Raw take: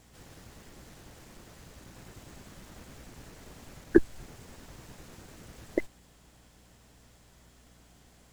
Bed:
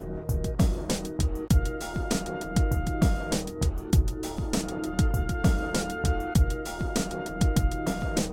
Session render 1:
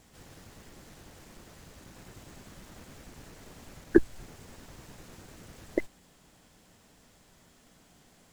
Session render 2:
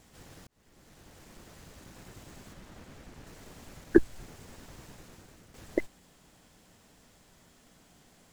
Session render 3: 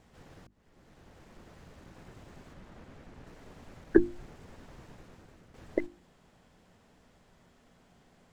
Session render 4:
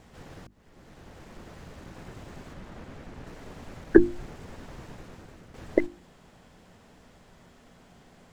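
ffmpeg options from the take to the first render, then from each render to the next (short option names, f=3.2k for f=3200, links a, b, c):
-af "bandreject=f=60:t=h:w=4,bandreject=f=120:t=h:w=4"
-filter_complex "[0:a]asettb=1/sr,asplit=3[a][b][c];[a]atrim=end=2.534[d];[b]atrim=start=2.53:end=3.27,asetpts=PTS-STARTPTS,afade=t=in:d=0.004:c=qsin,afade=t=out:st=0.736:d=0.004:c=qsin,highshelf=f=5.3k:g=-7.5[e];[c]atrim=start=3.266[f];[d][e]acrossfade=d=0.004:c1=hsin:c2=qsin[g];[g][f]acrossfade=d=0.004:c1=qsin:c2=hsin,asplit=3[h][i][j];[h]atrim=end=0.47,asetpts=PTS-STARTPTS,afade=t=out:st=0.466:d=0.004:c=hsin[k];[i]atrim=start=0.47:end=5.54,asetpts=PTS-STARTPTS,afade=t=in:d=1.21:c=qsin,afade=t=out:st=4.36:d=0.71:silence=0.375837[l];[j]atrim=start=5.54,asetpts=PTS-STARTPTS,afade=t=in:d=0.004:c=hsin:silence=0.375837[m];[k][l][m]concat=n=3:v=0:a=1"
-af "lowpass=f=2k:p=1,bandreject=f=50:t=h:w=6,bandreject=f=100:t=h:w=6,bandreject=f=150:t=h:w=6,bandreject=f=200:t=h:w=6,bandreject=f=250:t=h:w=6,bandreject=f=300:t=h:w=6,bandreject=f=350:t=h:w=6"
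-af "volume=7.5dB,alimiter=limit=-1dB:level=0:latency=1"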